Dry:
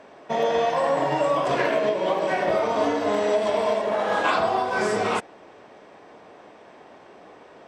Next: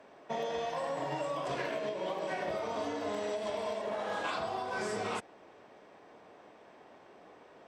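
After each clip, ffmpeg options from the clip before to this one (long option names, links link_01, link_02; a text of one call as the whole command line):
ffmpeg -i in.wav -filter_complex "[0:a]acrossover=split=150|3000[link_01][link_02][link_03];[link_02]acompressor=threshold=-24dB:ratio=6[link_04];[link_01][link_04][link_03]amix=inputs=3:normalize=0,volume=-8.5dB" out.wav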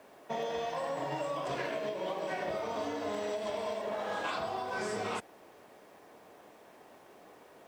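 ffmpeg -i in.wav -af "acrusher=bits=10:mix=0:aa=0.000001" out.wav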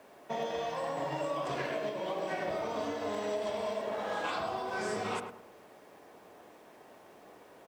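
ffmpeg -i in.wav -filter_complex "[0:a]asplit=2[link_01][link_02];[link_02]adelay=105,lowpass=frequency=1400:poles=1,volume=-6dB,asplit=2[link_03][link_04];[link_04]adelay=105,lowpass=frequency=1400:poles=1,volume=0.36,asplit=2[link_05][link_06];[link_06]adelay=105,lowpass=frequency=1400:poles=1,volume=0.36,asplit=2[link_07][link_08];[link_08]adelay=105,lowpass=frequency=1400:poles=1,volume=0.36[link_09];[link_01][link_03][link_05][link_07][link_09]amix=inputs=5:normalize=0" out.wav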